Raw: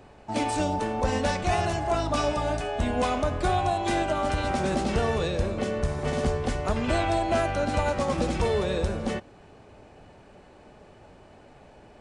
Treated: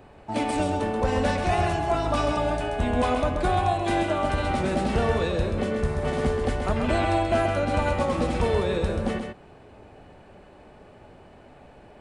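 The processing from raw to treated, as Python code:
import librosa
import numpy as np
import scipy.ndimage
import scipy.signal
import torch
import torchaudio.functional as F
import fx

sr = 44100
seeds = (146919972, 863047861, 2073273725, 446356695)

y = fx.peak_eq(x, sr, hz=6100.0, db=-7.0, octaves=0.95)
y = y + 10.0 ** (-6.0 / 20.0) * np.pad(y, (int(132 * sr / 1000.0), 0))[:len(y)]
y = F.gain(torch.from_numpy(y), 1.0).numpy()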